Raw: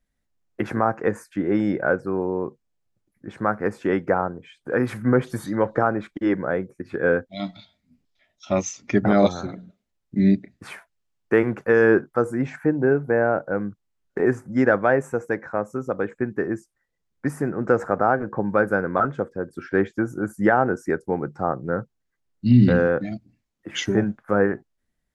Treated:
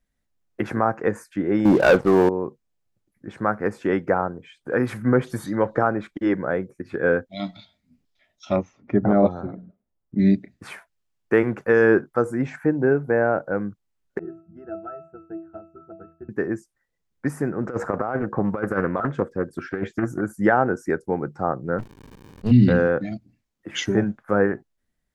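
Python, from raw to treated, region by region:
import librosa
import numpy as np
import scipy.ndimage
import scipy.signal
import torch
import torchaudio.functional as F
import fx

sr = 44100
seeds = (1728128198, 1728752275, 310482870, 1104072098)

y = fx.chain(x, sr, fx.highpass(hz=78.0, slope=6),
    fx.high_shelf_res(hz=1600.0, db=-8.0, q=1.5),
    fx.leveller(passes=3), at=(1.65, 2.29))
y = fx.chain(y, sr, fx.block_float(bits=7),
    fx.lowpass(hz=1100.0, slope=12), at=(8.56, 10.19))
y = fx.chain(y, sr, fx.transient(attack_db=7, sustain_db=1),
    fx.octave_resonator(note='E', decay_s=0.4), at=(14.19, 16.29))
y = fx.chain(y, sr, fx.over_compress(threshold_db=-22.0, ratio=-0.5),
    fx.doppler_dist(depth_ms=0.28), at=(17.63, 20.21))
y = fx.highpass(y, sr, hz=66.0, slope=24, at=(21.78, 22.5), fade=0.02)
y = fx.dmg_crackle(y, sr, seeds[0], per_s=290.0, level_db=-41.0, at=(21.78, 22.5), fade=0.02)
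y = fx.running_max(y, sr, window=65, at=(21.78, 22.5), fade=0.02)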